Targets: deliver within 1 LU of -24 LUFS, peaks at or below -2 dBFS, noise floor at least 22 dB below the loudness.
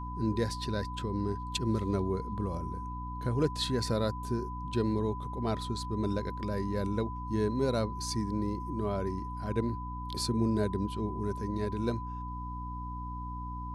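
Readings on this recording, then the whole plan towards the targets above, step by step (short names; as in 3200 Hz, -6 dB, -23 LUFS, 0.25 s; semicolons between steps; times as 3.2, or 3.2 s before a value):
hum 60 Hz; harmonics up to 300 Hz; hum level -37 dBFS; steady tone 1000 Hz; tone level -40 dBFS; loudness -33.5 LUFS; peak -17.0 dBFS; loudness target -24.0 LUFS
-> de-hum 60 Hz, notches 5; notch 1000 Hz, Q 30; gain +9.5 dB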